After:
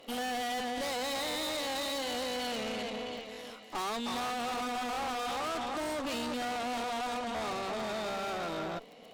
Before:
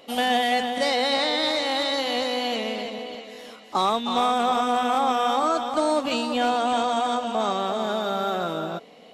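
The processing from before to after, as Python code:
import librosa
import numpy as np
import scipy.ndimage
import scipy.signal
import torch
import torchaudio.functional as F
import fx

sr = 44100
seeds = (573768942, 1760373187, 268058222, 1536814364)

y = fx.dmg_crackle(x, sr, seeds[0], per_s=41.0, level_db=-41.0)
y = fx.tube_stage(y, sr, drive_db=33.0, bias=0.75)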